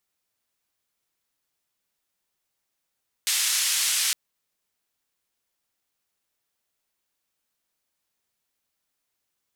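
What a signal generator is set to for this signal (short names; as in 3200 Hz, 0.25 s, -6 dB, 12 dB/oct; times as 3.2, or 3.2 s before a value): noise band 2200–10000 Hz, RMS -24 dBFS 0.86 s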